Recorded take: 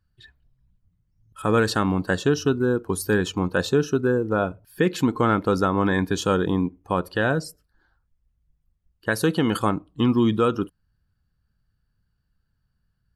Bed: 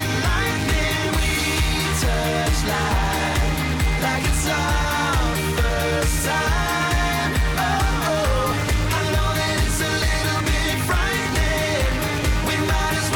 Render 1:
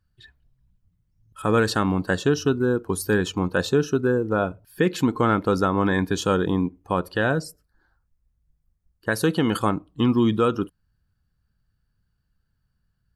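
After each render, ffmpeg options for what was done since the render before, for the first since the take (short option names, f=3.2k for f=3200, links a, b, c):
-filter_complex "[0:a]asettb=1/sr,asplit=3[a][b][c];[a]atrim=end=7.424[d];[b]atrim=start=7.42:end=9.12,asetpts=PTS-STARTPTS,afade=t=in:d=0.004:c=qsin,afade=t=out:st=1.696:d=0.004:c=qsin,equalizer=f=3.1k:t=o:w=0.77:g=-6.5[e];[c]atrim=start=9.116[f];[d][e]acrossfade=d=0.004:c1=hsin:c2=qsin[g];[g][f]acrossfade=d=0.004:c1=qsin:c2=hsin"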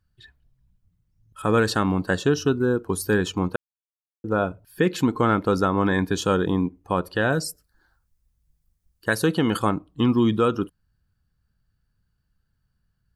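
-filter_complex "[0:a]asettb=1/sr,asplit=3[a][b][c];[a]atrim=end=7.324[d];[b]atrim=start=7.32:end=9.15,asetpts=PTS-STARTPTS,afade=t=in:d=0.004:c=qsin,afade=t=out:st=1.826:d=0.004:c=qsin,highshelf=f=3k:g=9.5[e];[c]atrim=start=9.146[f];[d][e]acrossfade=d=0.004:c1=hsin:c2=qsin[g];[g][f]acrossfade=d=0.004:c1=qsin:c2=hsin,asplit=3[h][i][j];[h]atrim=end=3.56,asetpts=PTS-STARTPTS,afade=t=out:st=3.556:d=0.004:c=hsin[k];[i]atrim=start=3.56:end=4.24,asetpts=PTS-STARTPTS,volume=0[l];[j]atrim=start=4.24,asetpts=PTS-STARTPTS,afade=t=in:d=0.004:c=hsin[m];[k][l][m]concat=n=3:v=0:a=1"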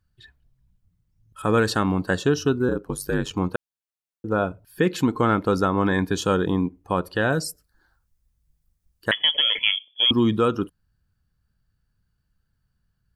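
-filter_complex "[0:a]asettb=1/sr,asplit=3[a][b][c];[a]atrim=end=2.684[d];[b]atrim=start=2.68:end=3.31,asetpts=PTS-STARTPTS,afade=t=in:d=0.004:c=qsin,afade=t=out:st=0.626:d=0.004:c=qsin,aeval=exprs='val(0)*sin(2*PI*49*n/s)':c=same[e];[c]atrim=start=3.306[f];[d][e]acrossfade=d=0.004:c1=hsin:c2=qsin[g];[g][f]acrossfade=d=0.004:c1=qsin:c2=hsin,asettb=1/sr,asplit=3[h][i][j];[h]atrim=end=9.114[k];[i]atrim=start=9.11:end=10.11,asetpts=PTS-STARTPTS,afade=t=in:d=0.004:c=qsin,afade=t=out:st=0.996:d=0.004:c=qsin,lowpass=f=3k:t=q:w=0.5098,lowpass=f=3k:t=q:w=0.6013,lowpass=f=3k:t=q:w=0.9,lowpass=f=3k:t=q:w=2.563,afreqshift=-3500[l];[j]atrim=start=10.106[m];[k][l]acrossfade=d=0.004:c1=hsin:c2=qsin[n];[n][m]acrossfade=d=0.004:c1=qsin:c2=hsin"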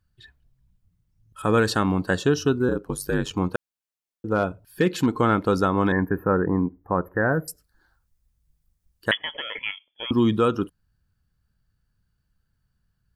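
-filter_complex "[0:a]asettb=1/sr,asplit=3[a][b][c];[a]atrim=end=3.544[d];[b]atrim=start=3.54:end=5.08,asetpts=PTS-STARTPTS,afade=t=in:d=0.004:c=qsin,afade=t=out:st=1.536:d=0.004:c=qsin,asoftclip=type=hard:threshold=-12.5dB[e];[c]atrim=start=5.076[f];[d][e]acrossfade=d=0.004:c1=hsin:c2=qsin[g];[g][f]acrossfade=d=0.004:c1=qsin:c2=hsin,asettb=1/sr,asplit=3[h][i][j];[h]atrim=end=5.924[k];[i]atrim=start=5.92:end=7.48,asetpts=PTS-STARTPTS,afade=t=in:d=0.004:c=qsin,afade=t=out:st=1.556:d=0.004:c=qsin,asuperstop=centerf=5500:order=20:qfactor=0.55[l];[j]atrim=start=7.476[m];[k][l]acrossfade=d=0.004:c1=hsin:c2=qsin[n];[n][m]acrossfade=d=0.004:c1=qsin:c2=hsin,asettb=1/sr,asplit=3[o][p][q];[o]atrim=end=9.174[r];[p]atrim=start=9.17:end=10.12,asetpts=PTS-STARTPTS,afade=t=in:d=0.004:c=qsin,afade=t=out:st=0.946:d=0.004:c=qsin,lowpass=f=2.1k:w=0.5412,lowpass=f=2.1k:w=1.3066[s];[q]atrim=start=10.116[t];[r][s]acrossfade=d=0.004:c1=hsin:c2=qsin[u];[u][t]acrossfade=d=0.004:c1=qsin:c2=hsin"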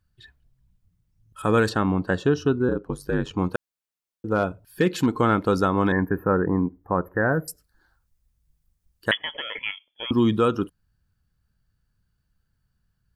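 -filter_complex "[0:a]asettb=1/sr,asplit=3[a][b][c];[a]atrim=end=1.694[d];[b]atrim=start=1.69:end=3.39,asetpts=PTS-STARTPTS,afade=t=in:d=0.004:c=qsin,afade=t=out:st=1.696:d=0.004:c=qsin,lowpass=f=2.1k:p=1[e];[c]atrim=start=3.386[f];[d][e]acrossfade=d=0.004:c1=hsin:c2=qsin[g];[g][f]acrossfade=d=0.004:c1=qsin:c2=hsin"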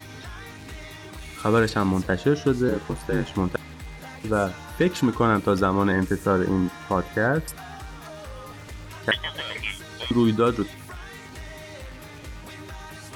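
-filter_complex "[1:a]volume=-19dB[a];[0:a][a]amix=inputs=2:normalize=0"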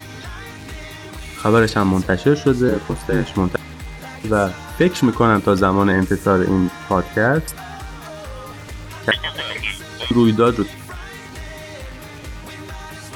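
-af "volume=6dB,alimiter=limit=-3dB:level=0:latency=1"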